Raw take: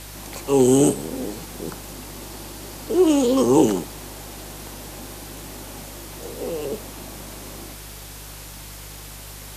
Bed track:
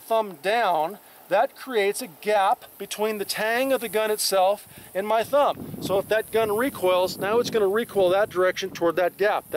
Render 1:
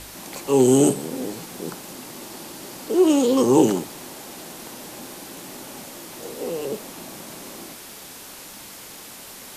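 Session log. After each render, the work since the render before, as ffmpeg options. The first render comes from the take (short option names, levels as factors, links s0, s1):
-af "bandreject=f=50:t=h:w=4,bandreject=f=100:t=h:w=4,bandreject=f=150:t=h:w=4"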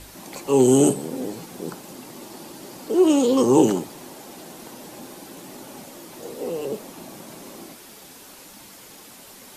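-af "afftdn=nr=6:nf=-41"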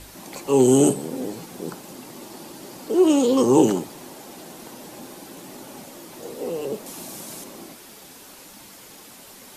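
-filter_complex "[0:a]asettb=1/sr,asplit=3[s0][s1][s2];[s0]atrim=end=6.864[s3];[s1]atrim=start=6.86:end=7.44,asetpts=PTS-STARTPTS,afade=t=in:d=0.004:c=qsin,afade=t=out:st=0.576:d=0.004:c=qsin,equalizer=f=9300:w=0.38:g=9[s4];[s2]atrim=start=7.436[s5];[s3][s4]acrossfade=d=0.004:c1=hsin:c2=qsin[s6];[s6][s5]acrossfade=d=0.004:c1=qsin:c2=hsin"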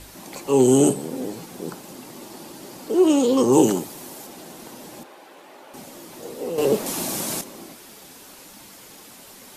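-filter_complex "[0:a]asettb=1/sr,asplit=3[s0][s1][s2];[s0]atrim=end=3.524[s3];[s1]atrim=start=3.52:end=4.27,asetpts=PTS-STARTPTS,afade=t=in:d=0.004:c=qsin,afade=t=out:st=0.746:d=0.004:c=qsin,highshelf=f=6700:g=8[s4];[s2]atrim=start=4.266[s5];[s3][s4]acrossfade=d=0.004:c1=hsin:c2=qsin[s6];[s6][s5]acrossfade=d=0.004:c1=qsin:c2=hsin,asettb=1/sr,asplit=3[s7][s8][s9];[s7]atrim=end=5.034[s10];[s8]atrim=start=5.03:end=5.74,asetpts=PTS-STARTPTS,afade=t=in:d=0.004:c=qsin,afade=t=out:st=0.706:d=0.004:c=qsin,acrossover=split=410 3300:gain=0.1 1 0.2[s11][s12][s13];[s11][s12][s13]amix=inputs=3:normalize=0[s14];[s9]atrim=start=5.736[s15];[s10][s14]acrossfade=d=0.004:c1=hsin:c2=qsin[s16];[s16][s15]acrossfade=d=0.004:c1=qsin:c2=hsin,asplit=3[s17][s18][s19];[s17]atrim=end=6.582[s20];[s18]atrim=start=6.578:end=7.412,asetpts=PTS-STARTPTS,volume=2.99[s21];[s19]atrim=start=7.408[s22];[s20][s21]acrossfade=d=0.004:c1=hsin:c2=hsin[s23];[s23][s22]acrossfade=d=0.004:c1=hsin:c2=hsin"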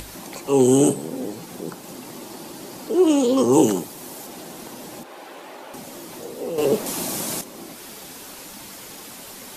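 -af "acompressor=mode=upward:threshold=0.0282:ratio=2.5"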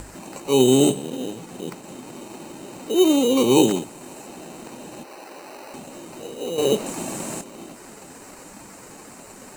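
-filter_complex "[0:a]acrossover=split=2400[s0][s1];[s0]acrusher=samples=13:mix=1:aa=0.000001[s2];[s1]bandpass=f=7700:t=q:w=4.4:csg=0[s3];[s2][s3]amix=inputs=2:normalize=0"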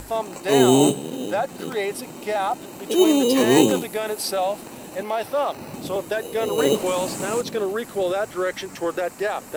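-filter_complex "[1:a]volume=0.708[s0];[0:a][s0]amix=inputs=2:normalize=0"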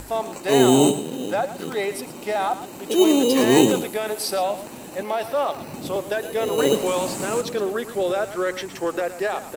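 -af "aecho=1:1:115:0.224"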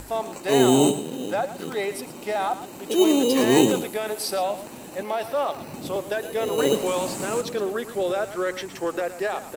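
-af "volume=0.794"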